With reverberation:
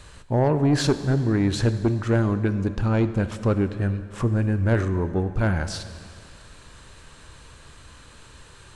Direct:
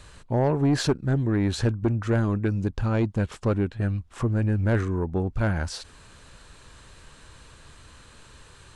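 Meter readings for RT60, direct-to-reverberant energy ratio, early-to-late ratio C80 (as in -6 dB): 2.2 s, 10.5 dB, 12.5 dB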